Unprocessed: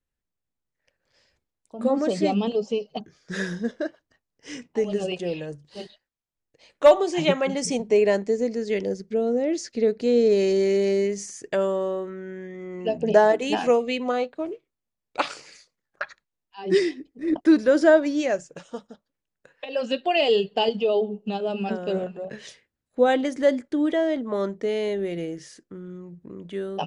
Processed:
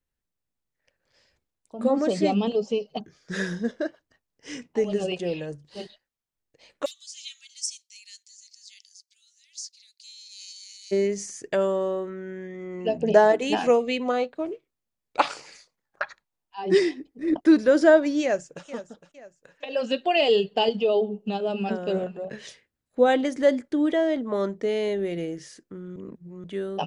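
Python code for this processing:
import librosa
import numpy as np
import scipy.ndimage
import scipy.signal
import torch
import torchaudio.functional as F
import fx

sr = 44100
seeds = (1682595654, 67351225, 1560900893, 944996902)

y = fx.cheby2_highpass(x, sr, hz=690.0, order=4, stop_db=80, at=(6.84, 10.91), fade=0.02)
y = fx.peak_eq(y, sr, hz=860.0, db=6.5, octaves=0.77, at=(15.19, 17.14))
y = fx.echo_throw(y, sr, start_s=18.22, length_s=0.43, ms=460, feedback_pct=40, wet_db=-14.0)
y = fx.edit(y, sr, fx.reverse_span(start_s=25.96, length_s=0.48), tone=tone)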